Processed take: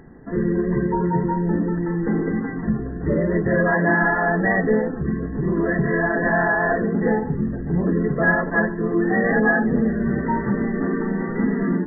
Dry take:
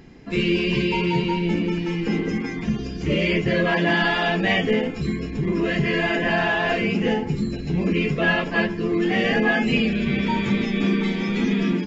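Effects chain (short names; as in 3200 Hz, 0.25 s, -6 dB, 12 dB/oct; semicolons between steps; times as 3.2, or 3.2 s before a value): brick-wall FIR low-pass 2000 Hz; notches 50/100/150/200/250/300/350 Hz; gain +2.5 dB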